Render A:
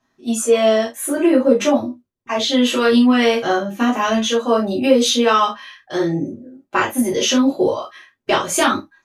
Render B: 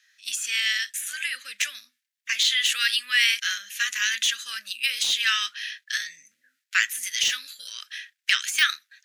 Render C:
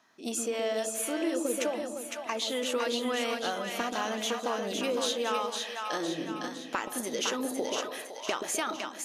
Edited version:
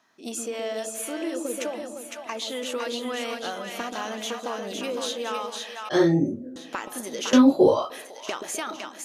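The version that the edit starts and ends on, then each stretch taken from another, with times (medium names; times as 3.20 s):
C
5.89–6.56 s: from A
7.33–7.90 s: from A
not used: B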